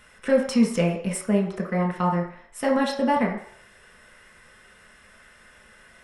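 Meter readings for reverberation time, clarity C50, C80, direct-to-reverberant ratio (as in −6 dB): 0.60 s, 6.0 dB, 9.0 dB, −1.5 dB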